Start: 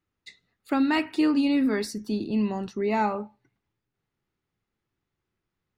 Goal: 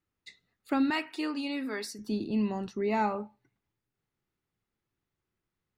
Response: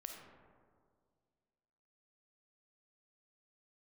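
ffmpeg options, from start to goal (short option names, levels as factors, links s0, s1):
-filter_complex "[0:a]asettb=1/sr,asplit=3[s0][s1][s2];[s0]atrim=end=0.904[s3];[s1]atrim=start=0.9:end=1.99,asetpts=PTS-STARTPTS,afade=t=in:d=0.004:c=qsin,afade=t=out:st=1.086:d=0.004:c=qsin,highpass=f=710:p=1[s4];[s2]atrim=start=1.986[s5];[s3][s4]acrossfade=d=0.004:c1=hsin:c2=qsin[s6];[s6][s5]acrossfade=d=0.004:c1=qsin:c2=hsin,volume=0.668"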